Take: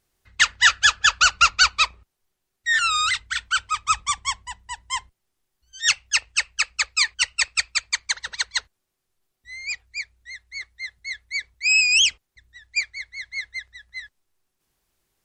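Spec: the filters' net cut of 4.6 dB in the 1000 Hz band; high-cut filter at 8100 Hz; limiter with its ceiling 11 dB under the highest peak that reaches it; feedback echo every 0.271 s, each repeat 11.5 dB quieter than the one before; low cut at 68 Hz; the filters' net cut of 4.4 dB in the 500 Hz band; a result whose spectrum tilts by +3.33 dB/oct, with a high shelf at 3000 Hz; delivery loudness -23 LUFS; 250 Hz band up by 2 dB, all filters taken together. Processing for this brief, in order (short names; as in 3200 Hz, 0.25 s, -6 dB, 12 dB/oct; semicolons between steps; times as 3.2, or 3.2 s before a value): HPF 68 Hz; LPF 8100 Hz; bell 250 Hz +4.5 dB; bell 500 Hz -3.5 dB; bell 1000 Hz -7.5 dB; high shelf 3000 Hz +3 dB; limiter -14 dBFS; feedback echo 0.271 s, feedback 27%, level -11.5 dB; gain +2.5 dB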